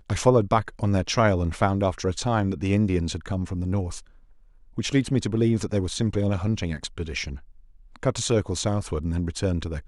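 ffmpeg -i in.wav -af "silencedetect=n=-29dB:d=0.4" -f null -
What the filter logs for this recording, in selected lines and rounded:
silence_start: 3.98
silence_end: 4.78 | silence_duration: 0.80
silence_start: 7.35
silence_end: 7.96 | silence_duration: 0.60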